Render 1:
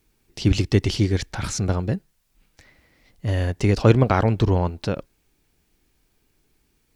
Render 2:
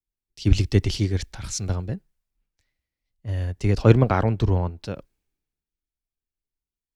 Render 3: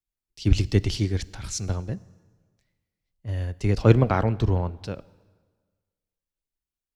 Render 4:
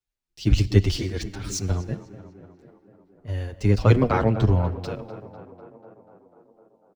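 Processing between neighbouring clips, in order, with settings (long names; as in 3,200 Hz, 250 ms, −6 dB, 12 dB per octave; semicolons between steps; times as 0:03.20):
low-shelf EQ 65 Hz +9.5 dB; multiband upward and downward expander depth 70%; level −5 dB
dense smooth reverb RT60 1.5 s, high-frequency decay 0.85×, DRR 19 dB; level −1.5 dB
running median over 3 samples; tape delay 247 ms, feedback 78%, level −13 dB, low-pass 2,300 Hz; barber-pole flanger 7.6 ms −1.3 Hz; level +4.5 dB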